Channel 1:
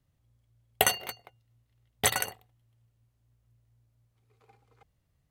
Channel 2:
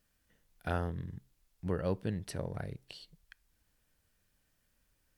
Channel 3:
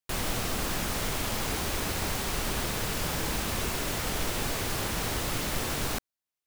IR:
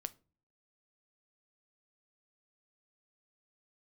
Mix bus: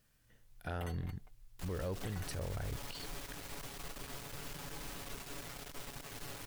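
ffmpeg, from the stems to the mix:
-filter_complex "[0:a]bass=frequency=250:gain=10,treble=frequency=4000:gain=-8,aecho=1:1:6.6:0.84,volume=-18.5dB[link_01];[1:a]asubboost=boost=12:cutoff=53,volume=2.5dB[link_02];[2:a]aecho=1:1:7.1:0.65,aeval=exprs='(tanh(31.6*val(0)+0.75)-tanh(0.75))/31.6':channel_layout=same,adelay=1500,volume=-12dB[link_03];[link_01][link_02][link_03]amix=inputs=3:normalize=0,asoftclip=type=tanh:threshold=-21dB,alimiter=level_in=7dB:limit=-24dB:level=0:latency=1:release=48,volume=-7dB"

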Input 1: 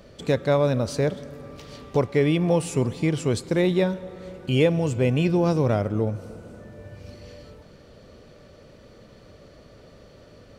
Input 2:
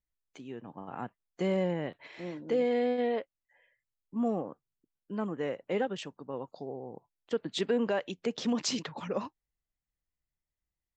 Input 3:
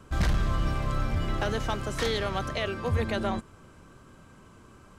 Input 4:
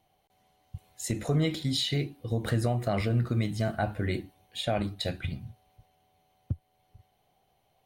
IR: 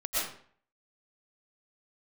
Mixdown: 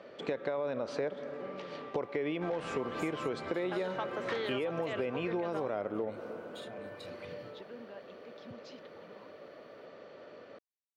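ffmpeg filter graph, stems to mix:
-filter_complex "[0:a]volume=2dB[link_01];[1:a]lowpass=frequency=4600:width=0.5412,lowpass=frequency=4600:width=1.3066,volume=-19.5dB[link_02];[2:a]adelay=2300,volume=-1dB[link_03];[3:a]acompressor=threshold=-34dB:ratio=2.5,adelay=2000,volume=-8.5dB[link_04];[link_01][link_03]amix=inputs=2:normalize=0,highpass=380,lowpass=2500,alimiter=limit=-17.5dB:level=0:latency=1:release=52,volume=0dB[link_05];[link_02][link_04]amix=inputs=2:normalize=0,highpass=160,alimiter=level_in=16.5dB:limit=-24dB:level=0:latency=1:release=43,volume=-16.5dB,volume=0dB[link_06];[link_05][link_06]amix=inputs=2:normalize=0,acompressor=threshold=-31dB:ratio=6"

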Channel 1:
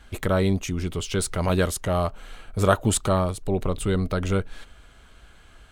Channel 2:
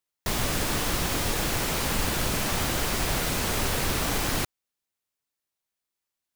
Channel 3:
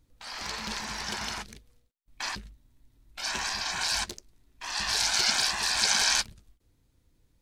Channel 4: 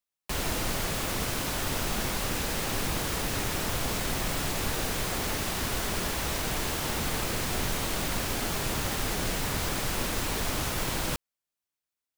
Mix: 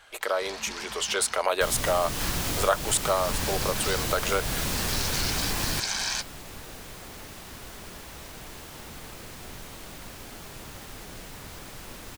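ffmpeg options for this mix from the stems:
ffmpeg -i stem1.wav -i stem2.wav -i stem3.wav -i stem4.wav -filter_complex "[0:a]dynaudnorm=framelen=440:gausssize=5:maxgain=11.5dB,highpass=frequency=510:width=0.5412,highpass=frequency=510:width=1.3066,volume=2dB[link_01];[1:a]acrossover=split=250|3000[link_02][link_03][link_04];[link_03]acompressor=threshold=-33dB:ratio=6[link_05];[link_02][link_05][link_04]amix=inputs=3:normalize=0,adelay=1350,volume=1dB[link_06];[2:a]volume=-4dB[link_07];[3:a]adelay=1900,volume=-12dB[link_08];[link_01][link_06][link_07][link_08]amix=inputs=4:normalize=0,acompressor=threshold=-25dB:ratio=2" out.wav

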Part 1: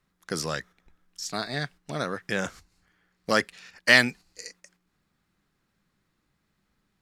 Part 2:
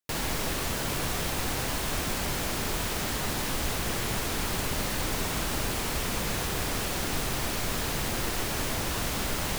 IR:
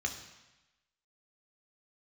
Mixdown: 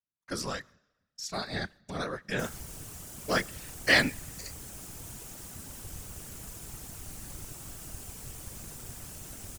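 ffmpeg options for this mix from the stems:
-filter_complex "[0:a]agate=range=-27dB:threshold=-49dB:ratio=16:detection=peak,volume=2.5dB,asplit=2[link_01][link_02];[link_02]volume=-22.5dB[link_03];[1:a]equalizer=frequency=125:width_type=o:width=1:gain=-4,equalizer=frequency=250:width_type=o:width=1:gain=-4,equalizer=frequency=500:width_type=o:width=1:gain=-7,equalizer=frequency=1000:width_type=o:width=1:gain=-7,equalizer=frequency=2000:width_type=o:width=1:gain=-8,equalizer=frequency=4000:width_type=o:width=1:gain=-9,equalizer=frequency=8000:width_type=o:width=1:gain=5,adelay=2300,volume=-5dB[link_04];[2:a]atrim=start_sample=2205[link_05];[link_03][link_05]afir=irnorm=-1:irlink=0[link_06];[link_01][link_04][link_06]amix=inputs=3:normalize=0,afftfilt=real='hypot(re,im)*cos(2*PI*random(0))':imag='hypot(re,im)*sin(2*PI*random(1))':win_size=512:overlap=0.75"

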